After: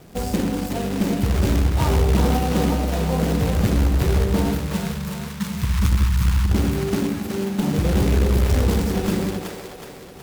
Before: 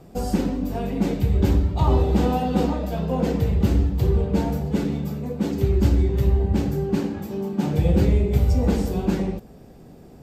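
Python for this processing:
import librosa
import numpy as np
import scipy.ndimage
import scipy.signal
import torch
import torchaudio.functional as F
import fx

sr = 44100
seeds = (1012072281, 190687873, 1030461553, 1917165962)

p1 = fx.quant_companded(x, sr, bits=4)
p2 = fx.ellip_bandstop(p1, sr, low_hz=200.0, high_hz=950.0, order=3, stop_db=40, at=(4.55, 6.51))
p3 = p2 + fx.echo_split(p2, sr, split_hz=400.0, low_ms=91, high_ms=370, feedback_pct=52, wet_db=-6.0, dry=0)
y = fx.clip_asym(p3, sr, top_db=-16.0, bottom_db=-8.5)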